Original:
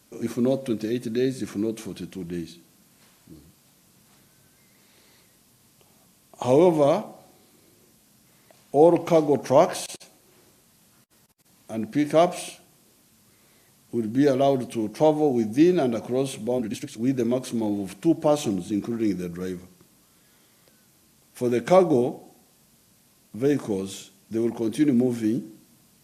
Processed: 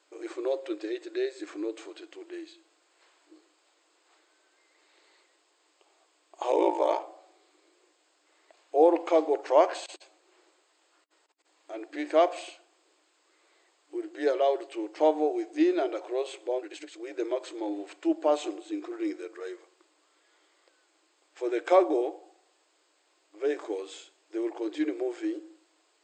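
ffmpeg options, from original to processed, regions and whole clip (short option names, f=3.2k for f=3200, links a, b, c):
-filter_complex "[0:a]asettb=1/sr,asplit=3[a][b][c];[a]atrim=end=6.514[d];[b]atrim=start=6.51:end=7,asetpts=PTS-STARTPTS,afade=t=in:d=0.004:c=qsin,afade=t=out:st=0.486:d=0.004:c=qsin,aeval=exprs='val(0)+0.0501*sin(2*PI*890*n/s)':c=same,aeval=exprs='val(0)*sin(2*PI*28*n/s)':c=same,highshelf=f=5.3k:g=6.5[e];[c]atrim=start=6.996[f];[d][e]acrossfade=d=0.004:c1=hsin:c2=qsin[g];[g][f]acrossfade=d=0.004:c1=qsin:c2=hsin,bandreject=f=5.8k:w=5.1,afftfilt=real='re*between(b*sr/4096,300,8400)':imag='im*between(b*sr/4096,300,8400)':win_size=4096:overlap=0.75,equalizer=f=1.2k:w=0.37:g=6,volume=-8dB"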